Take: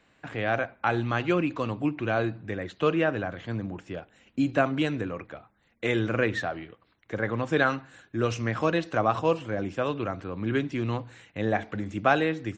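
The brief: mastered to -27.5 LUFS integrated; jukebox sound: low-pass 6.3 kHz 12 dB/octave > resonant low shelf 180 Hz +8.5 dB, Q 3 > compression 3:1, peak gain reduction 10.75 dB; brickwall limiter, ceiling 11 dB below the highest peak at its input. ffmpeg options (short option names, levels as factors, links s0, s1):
-af "alimiter=limit=0.1:level=0:latency=1,lowpass=6300,lowshelf=f=180:t=q:w=3:g=8.5,acompressor=threshold=0.0316:ratio=3,volume=1.88"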